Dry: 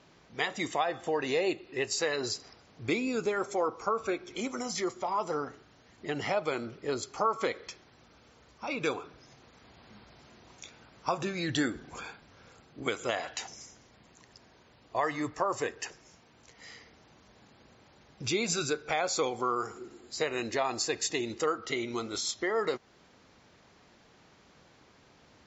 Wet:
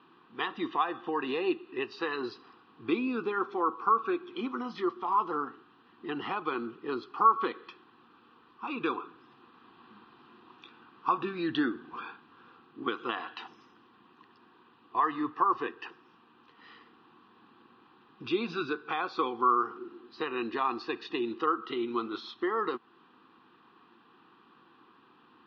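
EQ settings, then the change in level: cabinet simulation 230–3300 Hz, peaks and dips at 240 Hz +5 dB, 340 Hz +9 dB, 500 Hz +5 dB, 770 Hz +3 dB, 1.1 kHz +9 dB, 2.4 kHz +9 dB; static phaser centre 2.2 kHz, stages 6; 0.0 dB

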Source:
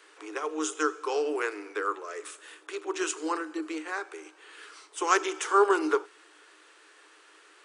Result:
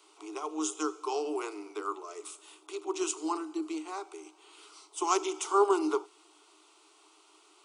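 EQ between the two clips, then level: static phaser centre 340 Hz, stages 8; 0.0 dB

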